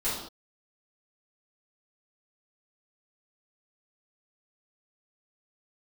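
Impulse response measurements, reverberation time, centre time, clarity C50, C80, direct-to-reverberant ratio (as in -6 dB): no single decay rate, 54 ms, 1.5 dB, 5.5 dB, -13.0 dB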